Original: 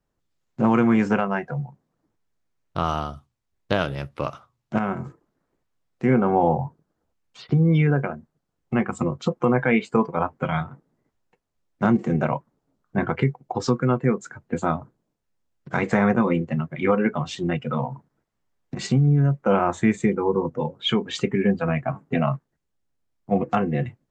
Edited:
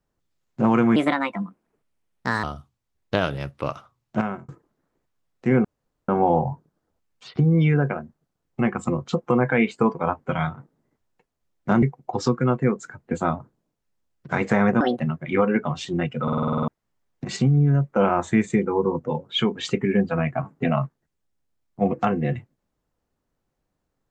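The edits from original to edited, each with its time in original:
0:00.96–0:03.01: play speed 139%
0:04.78–0:05.06: fade out
0:06.22: splice in room tone 0.44 s
0:11.96–0:13.24: remove
0:16.22–0:16.50: play speed 145%
0:17.73: stutter in place 0.05 s, 9 plays

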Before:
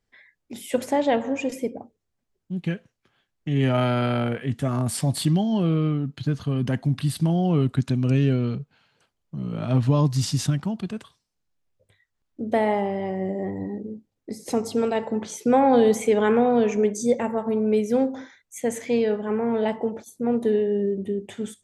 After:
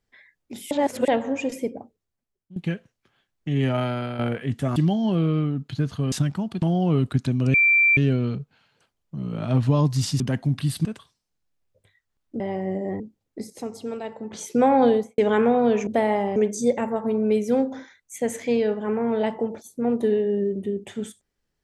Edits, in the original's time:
0:00.71–0:01.08: reverse
0:01.73–0:02.56: fade out, to −16 dB
0:03.49–0:04.19: fade out, to −9 dB
0:04.76–0:05.24: remove
0:06.60–0:07.25: swap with 0:10.40–0:10.90
0:08.17: insert tone 2,350 Hz −14 dBFS 0.43 s
0:12.45–0:12.94: move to 0:16.78
0:13.54–0:13.91: remove
0:14.41–0:15.24: clip gain −8.5 dB
0:15.74–0:16.09: fade out and dull

